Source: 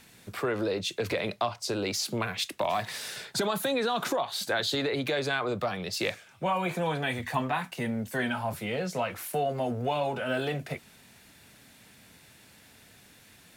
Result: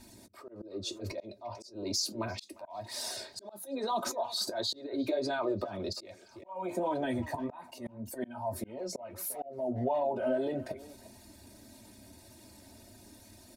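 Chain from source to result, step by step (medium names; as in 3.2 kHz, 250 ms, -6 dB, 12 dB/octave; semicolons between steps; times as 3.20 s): resonances exaggerated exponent 1.5; high-order bell 2.1 kHz -12.5 dB; comb 3.2 ms, depth 83%; compression 3:1, threshold -30 dBFS, peak gain reduction 7.5 dB; slow attack 104 ms; speakerphone echo 350 ms, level -16 dB; flange 1.7 Hz, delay 7.9 ms, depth 3.3 ms, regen -46%; slow attack 342 ms; trim +5.5 dB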